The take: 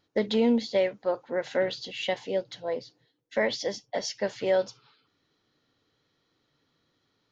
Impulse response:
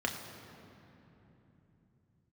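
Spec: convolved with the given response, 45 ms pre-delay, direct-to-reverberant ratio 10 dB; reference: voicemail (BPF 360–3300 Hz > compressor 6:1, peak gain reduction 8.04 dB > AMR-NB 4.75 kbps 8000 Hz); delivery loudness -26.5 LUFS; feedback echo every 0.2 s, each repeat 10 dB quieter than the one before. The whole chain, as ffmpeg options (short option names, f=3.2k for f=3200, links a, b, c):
-filter_complex "[0:a]aecho=1:1:200|400|600|800:0.316|0.101|0.0324|0.0104,asplit=2[a][b];[1:a]atrim=start_sample=2205,adelay=45[c];[b][c]afir=irnorm=-1:irlink=0,volume=-16.5dB[d];[a][d]amix=inputs=2:normalize=0,highpass=360,lowpass=3.3k,acompressor=threshold=-28dB:ratio=6,volume=10dB" -ar 8000 -c:a libopencore_amrnb -b:a 4750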